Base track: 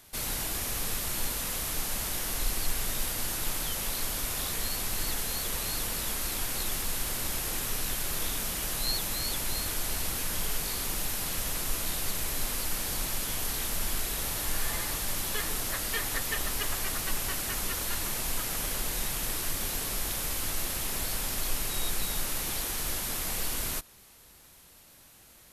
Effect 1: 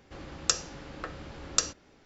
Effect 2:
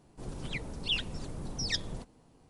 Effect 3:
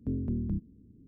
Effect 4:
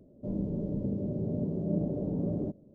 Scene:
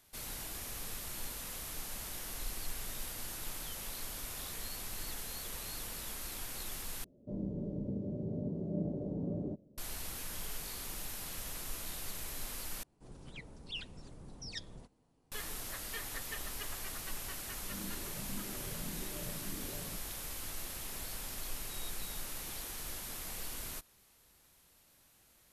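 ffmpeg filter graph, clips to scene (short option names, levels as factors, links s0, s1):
-filter_complex "[4:a]asplit=2[s0][s1];[0:a]volume=0.299[s2];[s1]asplit=2[s3][s4];[s4]afreqshift=1.8[s5];[s3][s5]amix=inputs=2:normalize=1[s6];[s2]asplit=3[s7][s8][s9];[s7]atrim=end=7.044[s10];[s0]atrim=end=2.74,asetpts=PTS-STARTPTS,volume=0.501[s11];[s8]atrim=start=9.776:end=12.834[s12];[2:a]atrim=end=2.49,asetpts=PTS-STARTPTS,volume=0.266[s13];[s9]atrim=start=15.316[s14];[s6]atrim=end=2.74,asetpts=PTS-STARTPTS,volume=0.237,afade=t=in:d=0.004:c=hsin,afade=t=out:st=2.736:d=0.004:c=hsin,adelay=17450[s15];[s10][s11]acrossfade=d=0.004:c1=hsin:c2=hsin[s16];[s16][s12]acrossfade=d=0.004:c1=hsin:c2=hsin[s17];[s17][s13]acrossfade=d=0.004:c1=hsin:c2=hsin[s18];[s18][s14]acrossfade=d=0.004:c1=hsin:c2=hsin[s19];[s19][s15]amix=inputs=2:normalize=0"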